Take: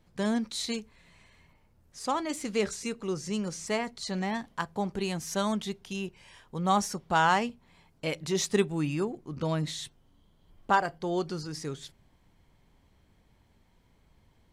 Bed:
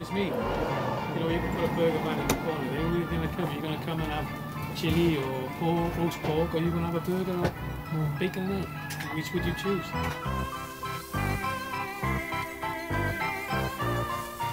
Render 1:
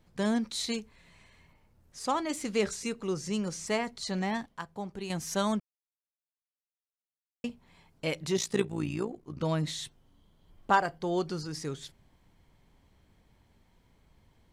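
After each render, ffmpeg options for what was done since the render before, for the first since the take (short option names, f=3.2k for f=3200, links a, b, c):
-filter_complex "[0:a]asettb=1/sr,asplit=3[a][b][c];[a]atrim=end=8.374[d];[b]atrim=start=8.37:end=9.41,asetpts=PTS-STARTPTS,afade=t=in:d=0.004:c=qsin,afade=t=out:st=1.036:d=0.004:c=qsin,tremolo=f=58:d=0.75[e];[c]atrim=start=9.406[f];[d][e]acrossfade=d=0.004:c1=hsin:c2=qsin[g];[g][f]acrossfade=d=0.004:c1=qsin:c2=hsin,asplit=5[h][i][j][k][l];[h]atrim=end=4.462[m];[i]atrim=start=4.458:end=5.102,asetpts=PTS-STARTPTS,volume=-7dB[n];[j]atrim=start=5.098:end=5.6,asetpts=PTS-STARTPTS,afade=t=out:st=0.498:d=0.004:c=hsin[o];[k]atrim=start=5.6:end=7.44,asetpts=PTS-STARTPTS,volume=0[p];[l]atrim=start=7.44,asetpts=PTS-STARTPTS,afade=t=in:d=0.004:c=hsin[q];[m][n]acrossfade=d=0.004:c1=hsin:c2=hsin[r];[o][p][q]concat=n=3:v=0:a=1[s];[r][s]acrossfade=d=0.004:c1=hsin:c2=hsin"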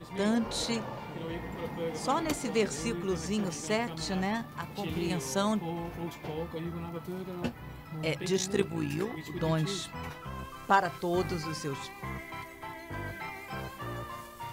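-filter_complex "[1:a]volume=-9.5dB[a];[0:a][a]amix=inputs=2:normalize=0"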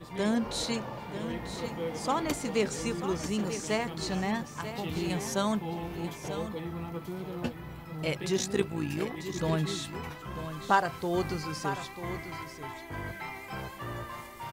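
-af "aecho=1:1:941:0.299"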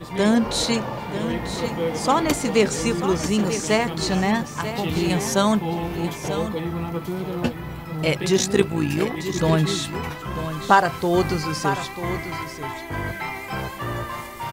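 -af "volume=10dB,alimiter=limit=-2dB:level=0:latency=1"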